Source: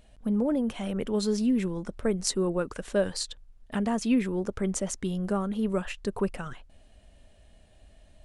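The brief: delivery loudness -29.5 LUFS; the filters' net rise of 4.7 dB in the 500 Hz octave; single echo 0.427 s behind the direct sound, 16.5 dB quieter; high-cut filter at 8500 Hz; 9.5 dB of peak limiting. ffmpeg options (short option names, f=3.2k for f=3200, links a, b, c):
-af "lowpass=8.5k,equalizer=f=500:t=o:g=6,alimiter=limit=-19.5dB:level=0:latency=1,aecho=1:1:427:0.15"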